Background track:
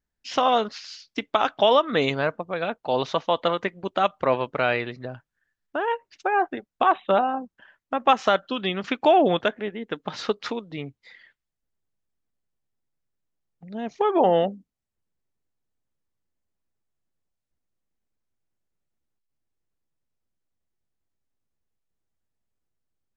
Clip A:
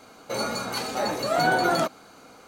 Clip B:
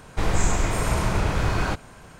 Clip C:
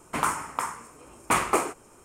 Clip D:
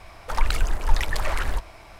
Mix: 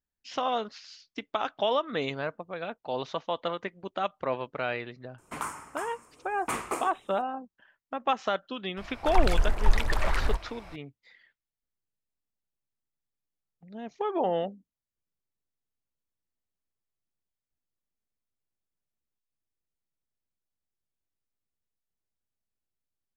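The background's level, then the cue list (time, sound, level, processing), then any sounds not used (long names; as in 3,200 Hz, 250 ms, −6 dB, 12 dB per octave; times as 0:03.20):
background track −8.5 dB
0:05.18: mix in C −9 dB
0:08.77: mix in D −1.5 dB + high-shelf EQ 5,900 Hz −7 dB
not used: A, B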